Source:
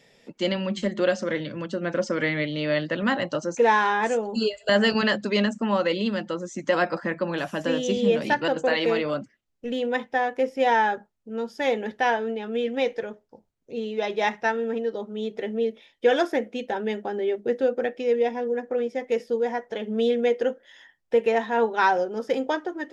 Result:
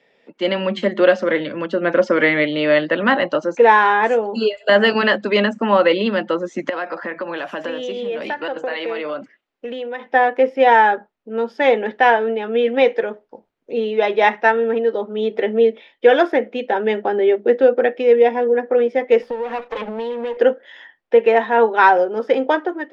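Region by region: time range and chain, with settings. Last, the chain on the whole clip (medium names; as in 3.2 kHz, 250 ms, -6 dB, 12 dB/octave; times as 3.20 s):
6.69–10.06 s: bass shelf 230 Hz -9.5 dB + compression 4:1, threshold -35 dBFS
19.22–20.37 s: comb filter that takes the minimum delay 3.9 ms + compression 10:1, threshold -31 dBFS
whole clip: three-band isolator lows -16 dB, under 240 Hz, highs -21 dB, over 3.6 kHz; level rider gain up to 12.5 dB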